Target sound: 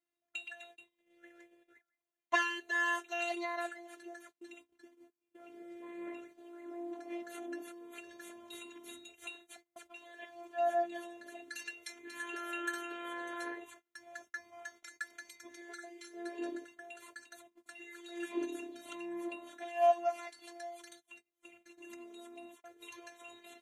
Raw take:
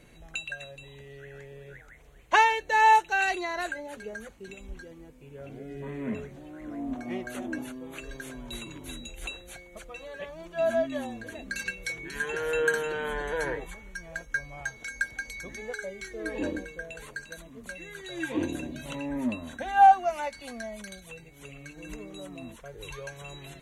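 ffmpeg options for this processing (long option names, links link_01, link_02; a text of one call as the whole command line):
ffmpeg -i in.wav -af "afftfilt=real='hypot(re,im)*cos(PI*b)':imag='0':win_size=512:overlap=0.75,highpass=260,agate=range=-27dB:threshold=-51dB:ratio=16:detection=peak,volume=-4.5dB" out.wav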